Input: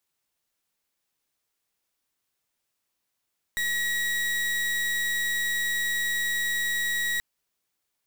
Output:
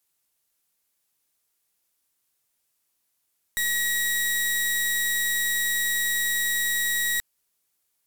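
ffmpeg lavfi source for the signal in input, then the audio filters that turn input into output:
-f lavfi -i "aevalsrc='0.0447*(2*lt(mod(1910*t,1),0.36)-1)':duration=3.63:sample_rate=44100"
-af "equalizer=frequency=12000:width_type=o:width=1.5:gain=9"

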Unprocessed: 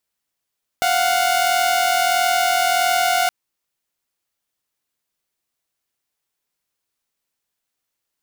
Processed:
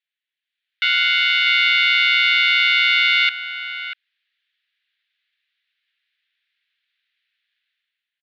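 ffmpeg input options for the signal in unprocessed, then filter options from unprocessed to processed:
-f lavfi -i "aevalsrc='0.158*((2*mod(698.46*t,1)-1)+(2*mod(739.99*t,1)-1))':duration=2.47:sample_rate=44100"
-filter_complex "[0:a]dynaudnorm=framelen=100:gausssize=11:maxgain=13.5dB,asuperpass=centerf=2500:order=8:qfactor=1.1,asplit=2[link_01][link_02];[link_02]adelay=641.4,volume=-8dB,highshelf=frequency=4000:gain=-14.4[link_03];[link_01][link_03]amix=inputs=2:normalize=0"

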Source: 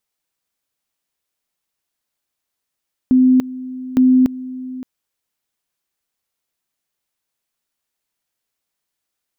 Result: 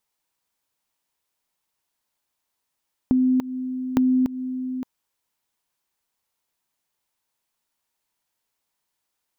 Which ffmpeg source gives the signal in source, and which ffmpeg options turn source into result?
-f lavfi -i "aevalsrc='pow(10,(-8-17.5*gte(mod(t,0.86),0.29))/20)*sin(2*PI*256*t)':duration=1.72:sample_rate=44100"
-af "equalizer=frequency=930:width_type=o:width=0.35:gain=7,acompressor=threshold=-18dB:ratio=6"

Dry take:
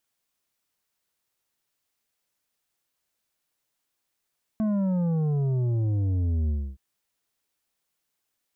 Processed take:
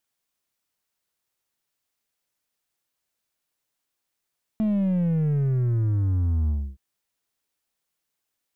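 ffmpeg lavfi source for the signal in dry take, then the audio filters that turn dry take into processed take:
-f lavfi -i "aevalsrc='0.0708*clip((2.17-t)/0.28,0,1)*tanh(2.51*sin(2*PI*220*2.17/log(65/220)*(exp(log(65/220)*t/2.17)-1)))/tanh(2.51)':duration=2.17:sample_rate=44100"
-filter_complex "[0:a]aeval=exprs='0.075*(cos(1*acos(clip(val(0)/0.075,-1,1)))-cos(1*PI/2))+0.00376*(cos(2*acos(clip(val(0)/0.075,-1,1)))-cos(2*PI/2))+0.00944*(cos(3*acos(clip(val(0)/0.075,-1,1)))-cos(3*PI/2))+0.0015*(cos(7*acos(clip(val(0)/0.075,-1,1)))-cos(7*PI/2))':channel_layout=same,asplit=2[link_01][link_02];[link_02]alimiter=level_in=7.5dB:limit=-24dB:level=0:latency=1,volume=-7.5dB,volume=-2.5dB[link_03];[link_01][link_03]amix=inputs=2:normalize=0"

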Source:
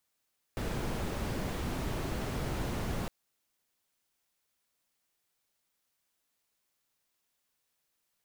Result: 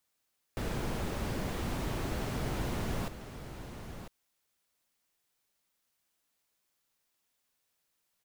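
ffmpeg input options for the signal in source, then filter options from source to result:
-f lavfi -i "anoisesrc=color=brown:amplitude=0.0933:duration=2.51:sample_rate=44100:seed=1"
-af "aecho=1:1:997:0.316"

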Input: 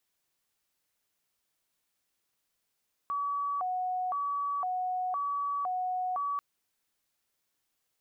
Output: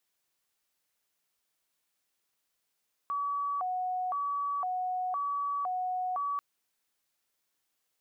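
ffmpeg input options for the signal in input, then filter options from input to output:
-f lavfi -i "aevalsrc='0.0355*sin(2*PI*(937.5*t+202.5/0.98*(0.5-abs(mod(0.98*t,1)-0.5))))':duration=3.29:sample_rate=44100"
-af "lowshelf=frequency=230:gain=-5.5"

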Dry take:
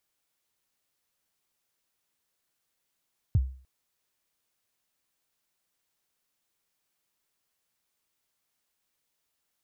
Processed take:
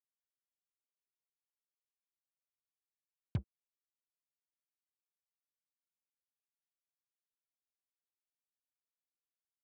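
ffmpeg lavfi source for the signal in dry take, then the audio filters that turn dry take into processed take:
-f lavfi -i "aevalsrc='0.158*pow(10,-3*t/0.43)*sin(2*PI*(130*0.038/log(65/130)*(exp(log(65/130)*min(t,0.038)/0.038)-1)+65*max(t-0.038,0)))':duration=0.3:sample_rate=44100"
-af "asuperpass=centerf=390:order=4:qfactor=0.5,acrusher=bits=6:mix=0:aa=0.5"

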